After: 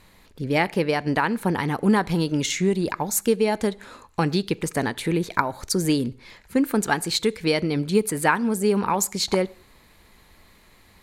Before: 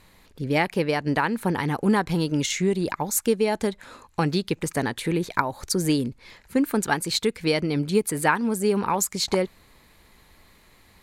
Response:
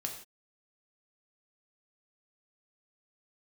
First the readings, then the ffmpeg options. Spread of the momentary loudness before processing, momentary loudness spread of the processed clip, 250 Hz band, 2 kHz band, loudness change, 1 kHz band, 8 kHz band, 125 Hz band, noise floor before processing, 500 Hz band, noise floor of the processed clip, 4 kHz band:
5 LU, 5 LU, +1.5 dB, +1.0 dB, +1.0 dB, +1.0 dB, +0.5 dB, +1.0 dB, -56 dBFS, +1.0 dB, -55 dBFS, +1.0 dB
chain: -filter_complex "[0:a]asplit=2[a][b];[1:a]atrim=start_sample=2205,highshelf=f=9.7k:g=-10.5[c];[b][c]afir=irnorm=-1:irlink=0,volume=-15.5dB[d];[a][d]amix=inputs=2:normalize=0"

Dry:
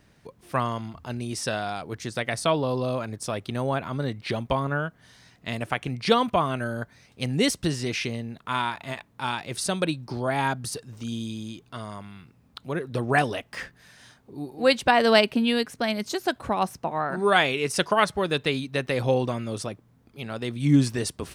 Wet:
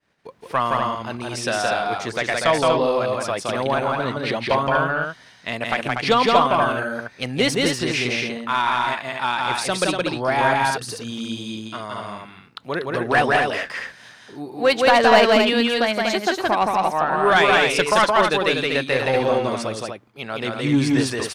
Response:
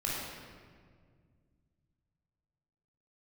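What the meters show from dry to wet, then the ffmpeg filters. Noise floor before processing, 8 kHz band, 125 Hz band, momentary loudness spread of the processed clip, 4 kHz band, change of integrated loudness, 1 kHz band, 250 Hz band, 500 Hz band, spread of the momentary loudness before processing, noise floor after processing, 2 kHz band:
-60 dBFS, +3.5 dB, -0.5 dB, 14 LU, +6.0 dB, +6.0 dB, +8.0 dB, +3.0 dB, +6.5 dB, 16 LU, -48 dBFS, +8.0 dB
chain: -filter_complex "[0:a]agate=range=-33dB:threshold=-50dB:ratio=3:detection=peak,asplit=2[a][b];[b]highpass=f=720:p=1,volume=16dB,asoftclip=type=tanh:threshold=-4dB[c];[a][c]amix=inputs=2:normalize=0,lowpass=f=2.9k:p=1,volume=-6dB,aecho=1:1:169.1|242:0.794|0.562,volume=-1.5dB"

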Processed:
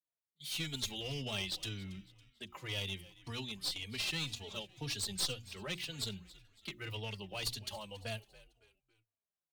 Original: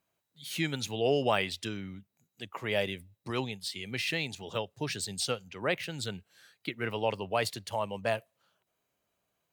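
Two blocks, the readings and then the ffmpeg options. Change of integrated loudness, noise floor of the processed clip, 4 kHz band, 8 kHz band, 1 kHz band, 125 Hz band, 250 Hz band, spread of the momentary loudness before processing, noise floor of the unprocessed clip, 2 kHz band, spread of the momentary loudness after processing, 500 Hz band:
-6.5 dB, under -85 dBFS, -1.0 dB, -2.0 dB, -15.0 dB, -4.5 dB, -9.0 dB, 12 LU, -82 dBFS, -8.0 dB, 12 LU, -15.5 dB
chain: -filter_complex "[0:a]bandreject=f=60:t=h:w=6,bandreject=f=120:t=h:w=6,bandreject=f=180:t=h:w=6,bandreject=f=240:t=h:w=6,bandreject=f=300:t=h:w=6,bandreject=f=360:t=h:w=6,agate=range=-21dB:threshold=-54dB:ratio=16:detection=peak,adynamicequalizer=threshold=0.00447:dfrequency=3600:dqfactor=1.2:tfrequency=3600:tqfactor=1.2:attack=5:release=100:ratio=0.375:range=3:mode=boostabove:tftype=bell,acrossover=split=170|3000[a][b][c];[b]acompressor=threshold=-49dB:ratio=2.5[d];[a][d][c]amix=inputs=3:normalize=0,aeval=exprs='clip(val(0),-1,0.0211)':c=same,asplit=2[e][f];[f]asplit=3[g][h][i];[g]adelay=278,afreqshift=-75,volume=-19dB[j];[h]adelay=556,afreqshift=-150,volume=-26.5dB[k];[i]adelay=834,afreqshift=-225,volume=-34.1dB[l];[j][k][l]amix=inputs=3:normalize=0[m];[e][m]amix=inputs=2:normalize=0,asplit=2[n][o];[o]adelay=3.5,afreqshift=-1.9[p];[n][p]amix=inputs=2:normalize=1,volume=1dB"

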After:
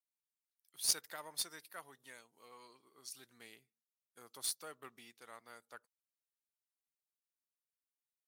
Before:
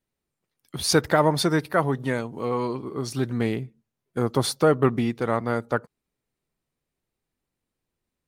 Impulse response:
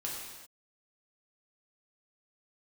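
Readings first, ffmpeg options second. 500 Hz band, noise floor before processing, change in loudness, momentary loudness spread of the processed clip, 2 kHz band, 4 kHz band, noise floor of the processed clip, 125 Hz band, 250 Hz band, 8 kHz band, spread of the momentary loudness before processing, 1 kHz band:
-33.5 dB, -85 dBFS, -15.5 dB, 23 LU, -22.5 dB, -12.0 dB, under -85 dBFS, under -40 dB, -38.5 dB, -7.0 dB, 10 LU, -27.0 dB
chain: -af "aderivative,aeval=exprs='0.376*(cos(1*acos(clip(val(0)/0.376,-1,1)))-cos(1*PI/2))+0.0299*(cos(7*acos(clip(val(0)/0.376,-1,1)))-cos(7*PI/2))':c=same,volume=-4dB"

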